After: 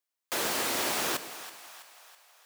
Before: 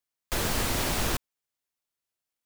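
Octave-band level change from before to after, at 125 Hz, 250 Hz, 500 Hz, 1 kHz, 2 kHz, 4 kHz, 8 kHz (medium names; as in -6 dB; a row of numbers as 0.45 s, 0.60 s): -17.5 dB, -5.0 dB, -1.0 dB, 0.0 dB, +0.5 dB, 0.0 dB, +0.5 dB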